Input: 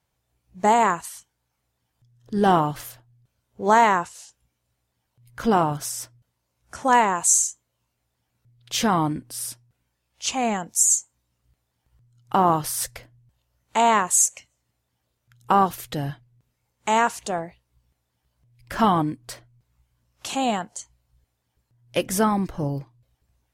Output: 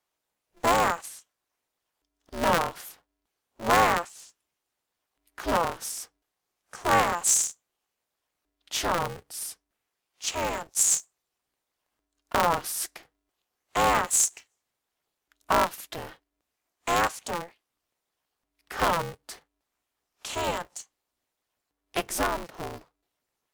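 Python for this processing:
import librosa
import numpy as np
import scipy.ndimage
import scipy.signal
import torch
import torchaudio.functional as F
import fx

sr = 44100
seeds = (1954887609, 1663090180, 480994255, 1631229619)

y = scipy.signal.sosfilt(scipy.signal.butter(2, 380.0, 'highpass', fs=sr, output='sos'), x)
y = y * np.sign(np.sin(2.0 * np.pi * 170.0 * np.arange(len(y)) / sr))
y = F.gain(torch.from_numpy(y), -4.0).numpy()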